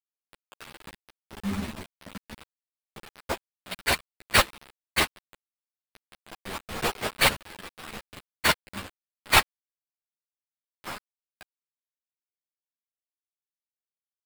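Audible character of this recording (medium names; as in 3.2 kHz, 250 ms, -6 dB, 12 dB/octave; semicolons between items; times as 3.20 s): aliases and images of a low sample rate 6.4 kHz, jitter 20%; tremolo triangle 1.4 Hz, depth 55%; a quantiser's noise floor 6-bit, dither none; a shimmering, thickened sound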